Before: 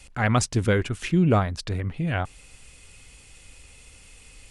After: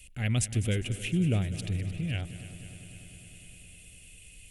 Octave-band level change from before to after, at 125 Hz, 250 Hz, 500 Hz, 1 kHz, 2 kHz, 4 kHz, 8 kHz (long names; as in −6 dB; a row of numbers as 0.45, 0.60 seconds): −4.0, −7.0, −12.5, −20.0, −9.0, −3.5, −2.5 decibels